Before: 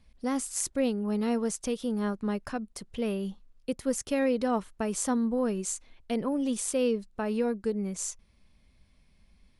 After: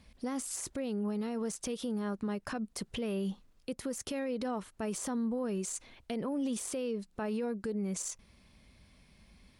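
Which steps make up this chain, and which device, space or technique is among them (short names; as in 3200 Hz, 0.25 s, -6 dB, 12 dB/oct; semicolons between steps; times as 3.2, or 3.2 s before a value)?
podcast mastering chain (HPF 79 Hz 6 dB/oct; de-esser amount 70%; compressor 2.5:1, threshold -36 dBFS, peak gain reduction 9.5 dB; limiter -34 dBFS, peak gain reduction 10 dB; gain +7 dB; MP3 112 kbps 48000 Hz)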